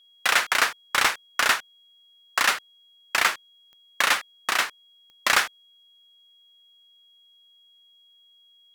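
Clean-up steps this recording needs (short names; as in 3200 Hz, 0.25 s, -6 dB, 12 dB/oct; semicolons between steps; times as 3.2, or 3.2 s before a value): de-click; notch 3300 Hz, Q 30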